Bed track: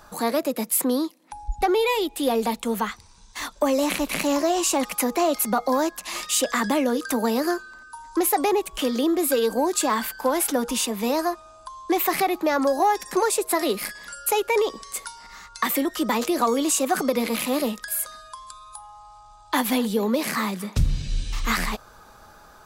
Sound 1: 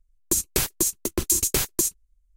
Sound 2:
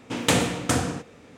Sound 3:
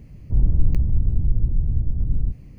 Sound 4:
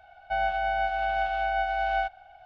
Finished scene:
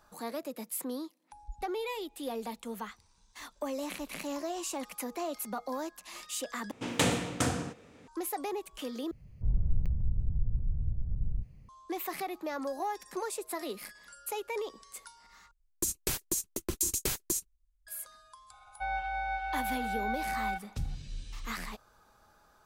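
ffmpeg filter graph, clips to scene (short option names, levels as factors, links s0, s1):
-filter_complex "[0:a]volume=0.188[s0];[3:a]equalizer=f=300:t=o:w=0.53:g=-11.5[s1];[4:a]aecho=1:1:2.2:0.95[s2];[s0]asplit=4[s3][s4][s5][s6];[s3]atrim=end=6.714[s7];[2:a]atrim=end=1.37,asetpts=PTS-STARTPTS,volume=0.473[s8];[s4]atrim=start=8.076:end=9.114[s9];[s1]atrim=end=2.58,asetpts=PTS-STARTPTS,volume=0.282[s10];[s5]atrim=start=11.686:end=15.514[s11];[1:a]atrim=end=2.36,asetpts=PTS-STARTPTS,volume=0.355[s12];[s6]atrim=start=17.866[s13];[s2]atrim=end=2.45,asetpts=PTS-STARTPTS,volume=0.398,afade=t=in:d=0.004:c=hsin,afade=t=out:st=2.446:d=0.004:c=hsin,adelay=18500[s14];[s7][s8]acrossfade=d=0.004:c1=hsin:c2=hsin[s15];[s15][s9]acrossfade=d=0.004:c1=hsin:c2=hsin[s16];[s16][s10]acrossfade=d=0.004:c1=hsin:c2=hsin[s17];[s17][s11]acrossfade=d=0.004:c1=hsin:c2=hsin[s18];[s18][s12]acrossfade=d=0.004:c1=hsin:c2=hsin[s19];[s19][s13]acrossfade=d=0.004:c1=hsin:c2=hsin[s20];[s20][s14]amix=inputs=2:normalize=0"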